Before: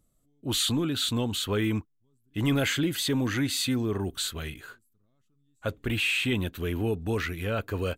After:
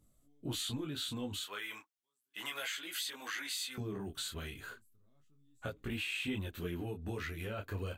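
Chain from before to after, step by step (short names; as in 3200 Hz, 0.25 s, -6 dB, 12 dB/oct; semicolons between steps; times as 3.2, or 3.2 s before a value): 1.44–3.78 HPF 1100 Hz 12 dB/oct; compressor 5:1, threshold -37 dBFS, peak gain reduction 12.5 dB; detuned doubles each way 11 cents; gain +3 dB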